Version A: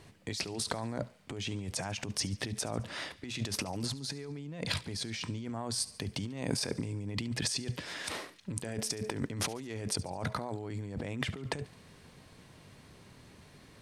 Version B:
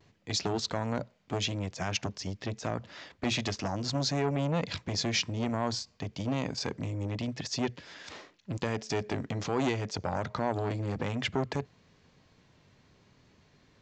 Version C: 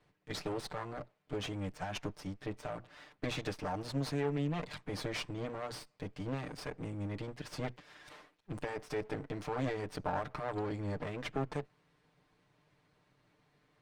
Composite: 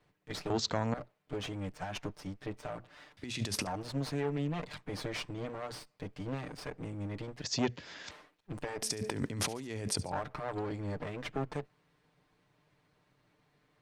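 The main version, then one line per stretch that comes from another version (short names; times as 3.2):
C
0.5–0.94 from B
3.17–3.67 from A
7.44–8.11 from B
8.82–10.12 from A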